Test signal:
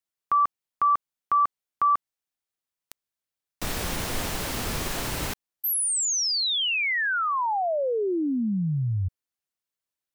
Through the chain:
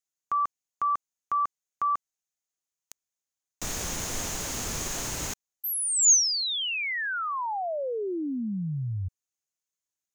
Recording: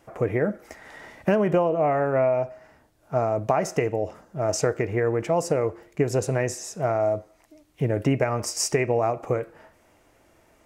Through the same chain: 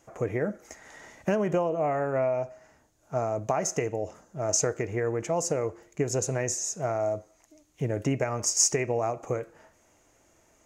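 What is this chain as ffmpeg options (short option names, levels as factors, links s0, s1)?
-af "equalizer=f=6600:t=o:w=0.39:g=14.5,volume=0.562"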